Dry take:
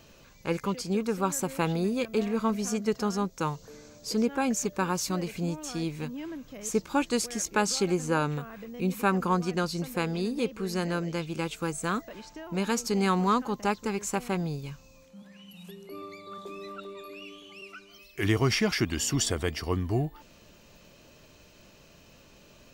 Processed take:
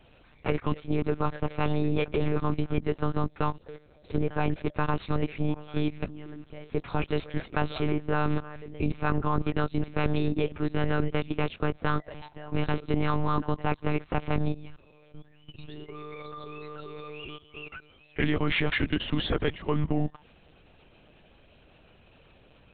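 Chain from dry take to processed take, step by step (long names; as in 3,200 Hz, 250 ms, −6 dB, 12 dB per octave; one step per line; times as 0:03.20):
output level in coarse steps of 16 dB
one-pitch LPC vocoder at 8 kHz 150 Hz
level +7.5 dB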